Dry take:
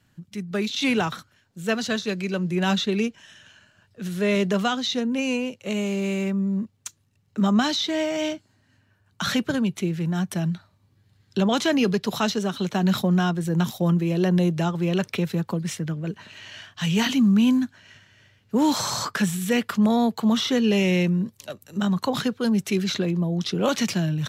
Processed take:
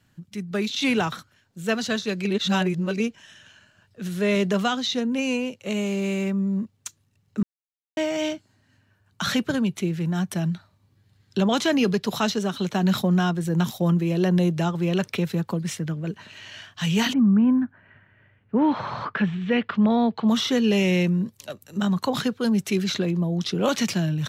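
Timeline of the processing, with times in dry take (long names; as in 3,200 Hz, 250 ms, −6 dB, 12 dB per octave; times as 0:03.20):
0:02.25–0:03.00: reverse
0:07.43–0:07.97: silence
0:17.12–0:20.27: low-pass filter 1,500 Hz → 4,000 Hz 24 dB per octave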